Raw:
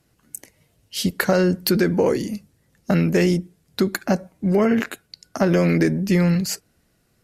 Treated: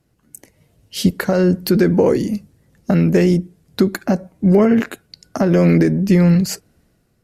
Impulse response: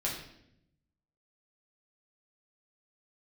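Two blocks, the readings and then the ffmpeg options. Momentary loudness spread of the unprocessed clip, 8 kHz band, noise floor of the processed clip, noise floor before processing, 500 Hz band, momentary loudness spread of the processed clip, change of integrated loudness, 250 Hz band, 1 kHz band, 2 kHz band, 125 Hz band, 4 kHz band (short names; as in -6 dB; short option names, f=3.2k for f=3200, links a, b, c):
17 LU, 0.0 dB, -62 dBFS, -65 dBFS, +4.0 dB, 15 LU, +4.5 dB, +5.5 dB, +1.5 dB, -0.5 dB, +5.5 dB, -0.5 dB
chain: -af "alimiter=limit=-10dB:level=0:latency=1:release=360,tiltshelf=f=890:g=3.5,dynaudnorm=f=220:g=5:m=11.5dB,volume=-2dB"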